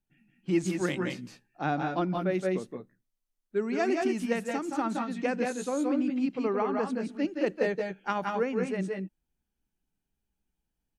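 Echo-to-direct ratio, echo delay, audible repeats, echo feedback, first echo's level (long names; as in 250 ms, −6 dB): −2.0 dB, 171 ms, 1, repeats not evenly spaced, −4.5 dB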